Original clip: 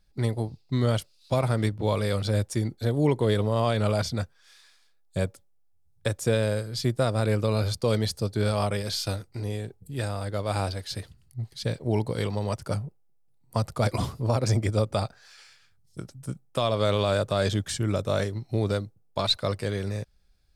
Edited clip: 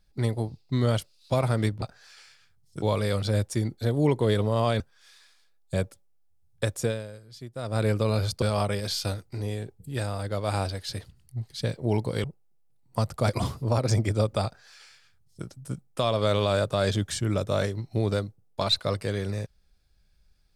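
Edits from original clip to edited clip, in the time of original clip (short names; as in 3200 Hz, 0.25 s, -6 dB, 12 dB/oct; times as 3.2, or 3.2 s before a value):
3.8–4.23 cut
6.24–7.22 dip -15.5 dB, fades 0.31 s quadratic
7.85–8.44 cut
12.26–12.82 cut
15.03–16.03 copy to 1.82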